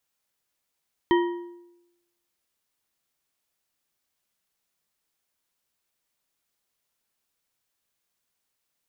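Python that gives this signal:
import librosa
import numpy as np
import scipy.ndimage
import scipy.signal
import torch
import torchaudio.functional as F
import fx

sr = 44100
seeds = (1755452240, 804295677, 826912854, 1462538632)

y = fx.strike_metal(sr, length_s=1.55, level_db=-15.5, body='bar', hz=348.0, decay_s=0.93, tilt_db=5.5, modes=4)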